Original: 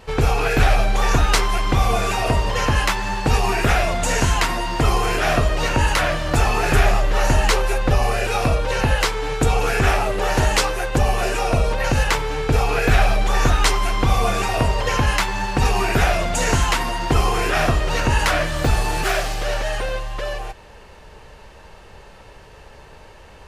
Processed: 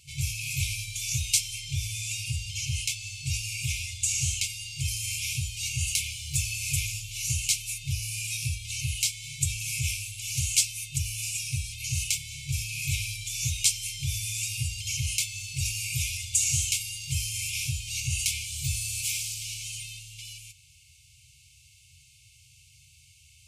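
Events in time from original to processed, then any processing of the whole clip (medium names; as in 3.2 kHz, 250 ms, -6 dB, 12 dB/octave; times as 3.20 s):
1.49–4.88 s: treble shelf 11 kHz -10 dB
whole clip: high-pass 94 Hz 24 dB/octave; FFT band-reject 150–2100 Hz; graphic EQ 125/250/500/2000/4000/8000 Hz -10/+8/+9/-10/-5/+6 dB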